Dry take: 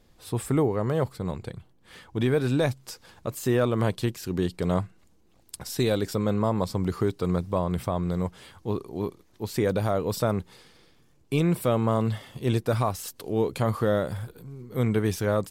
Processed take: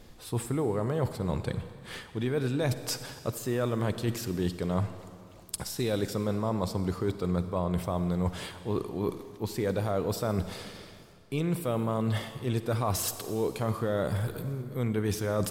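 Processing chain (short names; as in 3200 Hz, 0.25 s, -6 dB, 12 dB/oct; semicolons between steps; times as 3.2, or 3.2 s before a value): reverse; compressor 5:1, threshold -37 dBFS, peak gain reduction 16.5 dB; reverse; reverb RT60 2.3 s, pre-delay 40 ms, DRR 10.5 dB; gain +9 dB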